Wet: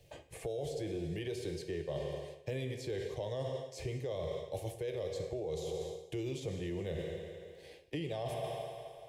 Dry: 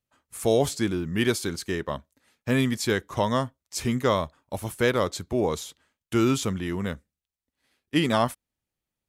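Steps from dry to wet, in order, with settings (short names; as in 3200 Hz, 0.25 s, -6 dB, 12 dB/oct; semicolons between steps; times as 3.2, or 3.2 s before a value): bell 980 Hz -11 dB 0.58 oct; on a send at -6 dB: reverb RT60 1.3 s, pre-delay 3 ms; on the sum: limiter -19.5 dBFS, peak gain reduction 10.5 dB; fixed phaser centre 560 Hz, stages 4; reverse; compressor 16:1, threshold -44 dBFS, peak gain reduction 19 dB; reverse; LPF 1600 Hz 6 dB/oct; low shelf 62 Hz -6 dB; three-band squash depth 70%; gain +10 dB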